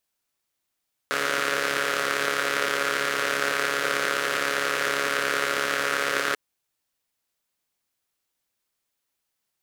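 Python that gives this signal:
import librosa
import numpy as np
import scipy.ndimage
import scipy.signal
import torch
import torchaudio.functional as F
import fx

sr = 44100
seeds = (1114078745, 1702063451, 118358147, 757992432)

y = fx.engine_four(sr, seeds[0], length_s=5.24, rpm=4200, resonances_hz=(500.0, 1400.0))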